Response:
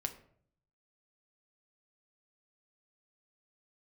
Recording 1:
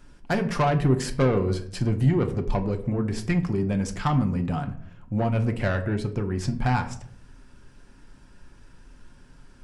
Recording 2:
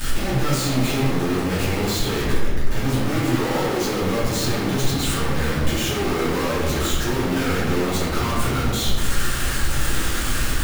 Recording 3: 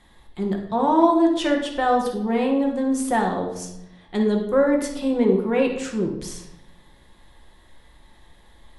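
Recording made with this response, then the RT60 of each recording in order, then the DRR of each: 1; 0.60, 1.3, 0.90 s; 5.0, -10.0, 0.5 dB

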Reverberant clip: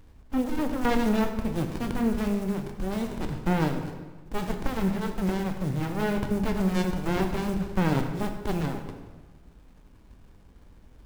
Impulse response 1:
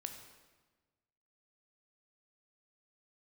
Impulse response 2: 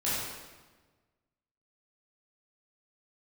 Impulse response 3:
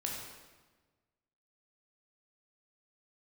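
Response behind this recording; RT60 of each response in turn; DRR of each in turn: 1; 1.3, 1.3, 1.3 s; 5.0, -10.5, -2.0 dB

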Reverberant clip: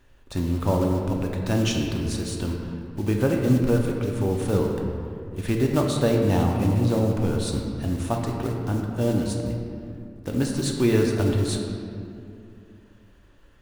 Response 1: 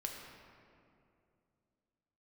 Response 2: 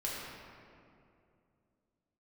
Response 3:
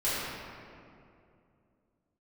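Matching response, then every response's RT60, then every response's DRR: 1; 2.5, 2.5, 2.5 s; 0.5, -6.0, -12.5 dB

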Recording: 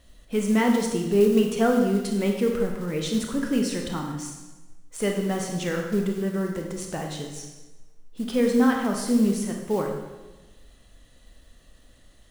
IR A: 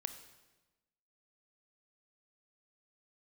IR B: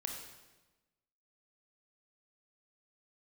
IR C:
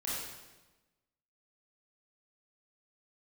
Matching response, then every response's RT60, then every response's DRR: B; 1.1, 1.1, 1.1 s; 9.0, 1.5, -8.0 dB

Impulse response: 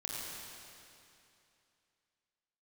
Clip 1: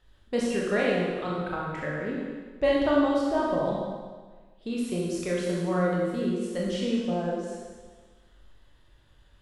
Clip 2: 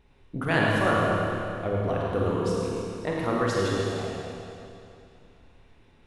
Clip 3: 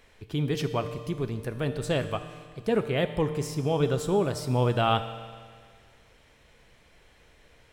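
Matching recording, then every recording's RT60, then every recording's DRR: 2; 1.4, 2.7, 1.9 s; -4.5, -4.5, 9.0 dB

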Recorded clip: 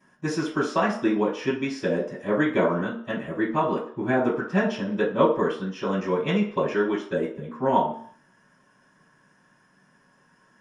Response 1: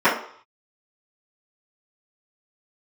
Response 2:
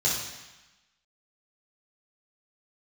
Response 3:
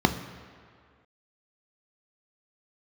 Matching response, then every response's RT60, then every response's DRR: 1; 0.60, 1.1, 2.1 s; -15.0, -7.0, 7.0 dB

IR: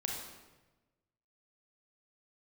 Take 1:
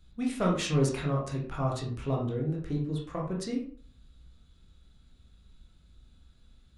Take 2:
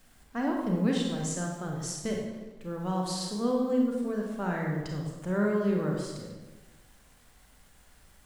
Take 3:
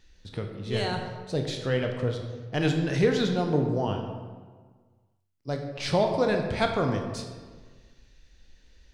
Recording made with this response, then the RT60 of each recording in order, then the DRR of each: 2; 0.50, 1.1, 1.5 s; -2.5, -0.5, 3.0 dB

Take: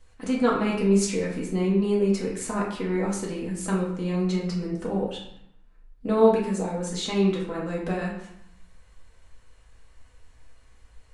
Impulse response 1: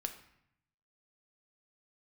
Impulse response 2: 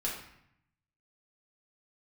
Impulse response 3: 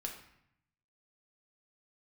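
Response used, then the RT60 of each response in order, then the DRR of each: 2; 0.70, 0.70, 0.70 s; 5.5, -5.0, 0.5 dB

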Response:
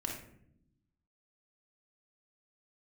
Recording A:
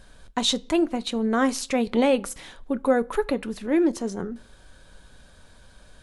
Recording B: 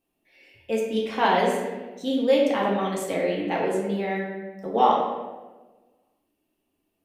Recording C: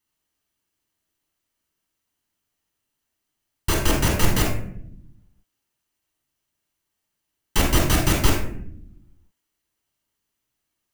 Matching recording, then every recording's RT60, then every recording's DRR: C; 0.45, 1.3, 0.70 s; 12.0, -4.0, -2.0 dB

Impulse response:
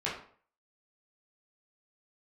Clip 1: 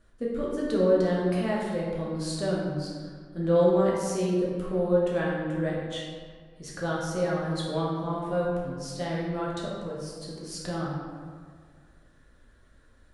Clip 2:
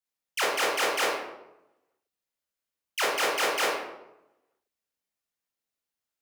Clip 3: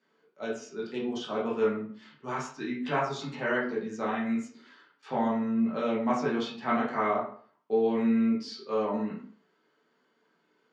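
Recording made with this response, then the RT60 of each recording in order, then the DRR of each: 3; 1.8, 0.90, 0.50 s; -5.5, -5.0, -7.0 dB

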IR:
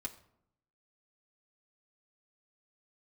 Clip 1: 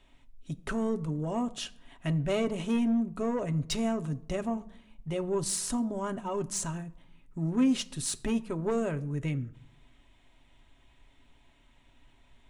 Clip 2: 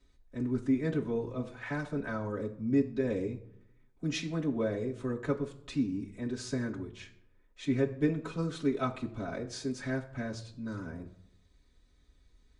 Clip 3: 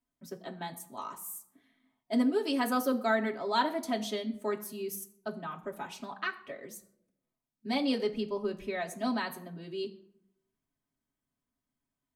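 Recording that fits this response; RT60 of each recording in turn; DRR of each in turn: 3; not exponential, not exponential, not exponential; 6.5, -6.0, -2.0 dB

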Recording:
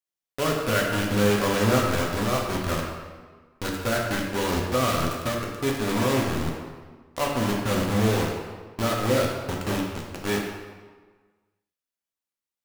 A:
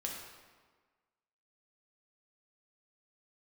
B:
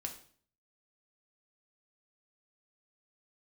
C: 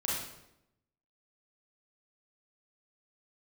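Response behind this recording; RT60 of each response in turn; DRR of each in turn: A; 1.5, 0.50, 0.85 s; -1.5, 2.5, -6.0 dB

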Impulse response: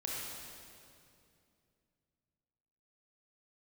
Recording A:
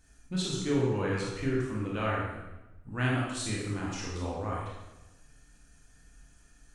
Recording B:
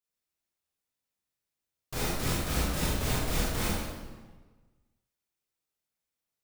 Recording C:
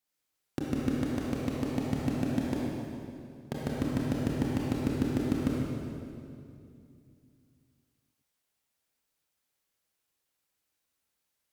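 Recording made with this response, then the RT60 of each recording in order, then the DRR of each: C; 1.0, 1.3, 2.5 s; -5.0, -7.5, -4.5 dB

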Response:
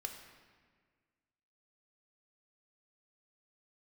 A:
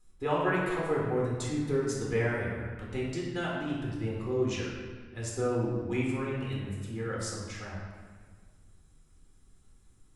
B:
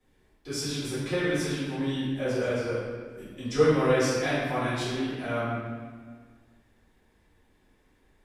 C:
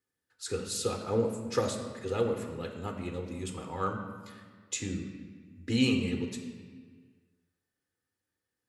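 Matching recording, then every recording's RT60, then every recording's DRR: C; 1.6, 1.6, 1.6 s; -5.0, -12.5, 3.5 dB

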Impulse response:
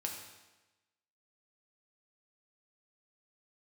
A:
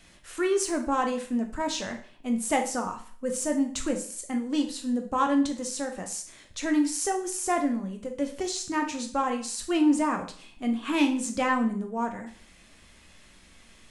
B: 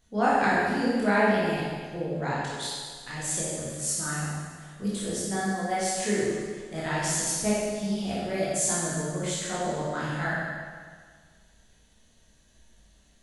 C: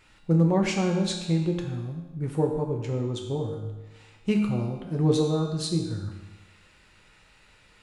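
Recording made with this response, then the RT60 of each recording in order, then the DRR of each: C; 0.45, 1.7, 1.1 s; 4.0, -8.5, 0.5 dB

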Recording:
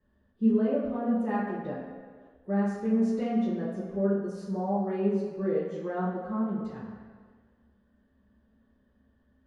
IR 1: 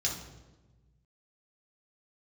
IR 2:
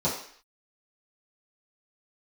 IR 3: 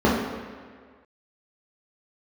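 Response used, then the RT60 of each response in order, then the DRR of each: 3; 1.2, 0.55, 1.7 s; -3.0, -11.0, -7.0 dB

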